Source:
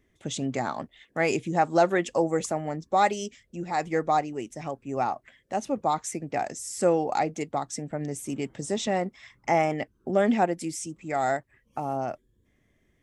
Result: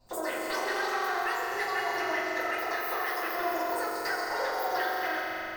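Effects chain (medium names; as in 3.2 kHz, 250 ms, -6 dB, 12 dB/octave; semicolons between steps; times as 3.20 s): dynamic bell 400 Hz, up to +4 dB, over -36 dBFS, Q 0.9; compression 6:1, threshold -35 dBFS, peak gain reduction 20 dB; on a send: echo with a slow build-up 101 ms, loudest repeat 5, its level -8 dB; on the sum: simulated room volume 290 m³, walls mixed, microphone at 3.7 m; speed mistake 33 rpm record played at 78 rpm; trim -7 dB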